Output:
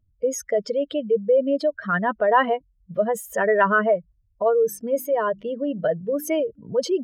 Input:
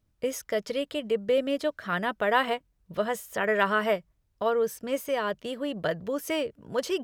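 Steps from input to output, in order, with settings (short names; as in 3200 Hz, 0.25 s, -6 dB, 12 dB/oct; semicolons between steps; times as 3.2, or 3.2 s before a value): spectral contrast raised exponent 2; 4.62–6.4 notches 50/100/150/200/250/300/350 Hz; gain +6.5 dB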